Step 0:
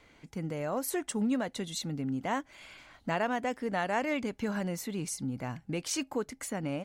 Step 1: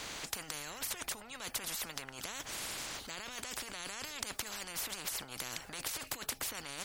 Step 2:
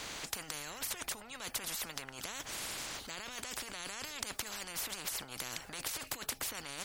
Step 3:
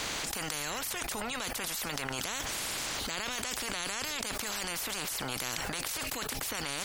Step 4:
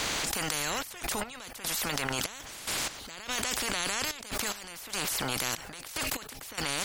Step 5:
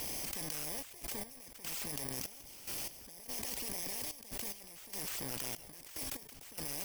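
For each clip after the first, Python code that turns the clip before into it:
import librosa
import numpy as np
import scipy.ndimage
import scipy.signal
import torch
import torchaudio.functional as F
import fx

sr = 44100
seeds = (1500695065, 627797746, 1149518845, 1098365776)

y1 = fx.over_compress(x, sr, threshold_db=-39.0, ratio=-1.0)
y1 = fx.spectral_comp(y1, sr, ratio=10.0)
y1 = y1 * 10.0 ** (7.5 / 20.0)
y2 = y1
y3 = fx.env_flatten(y2, sr, amount_pct=100)
y3 = y3 * 10.0 ** (-1.5 / 20.0)
y4 = fx.step_gate(y3, sr, bpm=73, pattern='xxxx.x..xxx..x..', floor_db=-12.0, edge_ms=4.5)
y4 = y4 * 10.0 ** (4.0 / 20.0)
y5 = fx.bit_reversed(y4, sr, seeds[0], block=32)
y5 = y5 * 10.0 ** (-8.5 / 20.0)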